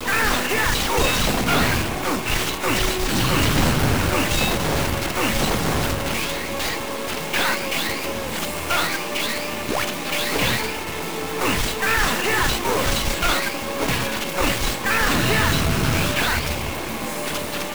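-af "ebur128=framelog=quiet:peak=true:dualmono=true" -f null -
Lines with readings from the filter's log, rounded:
Integrated loudness:
  I:         -18.2 LUFS
  Threshold: -28.2 LUFS
Loudness range:
  LRA:         3.1 LU
  Threshold: -38.3 LUFS
  LRA low:   -20.1 LUFS
  LRA high:  -17.0 LUFS
True peak:
  Peak:       -8.9 dBFS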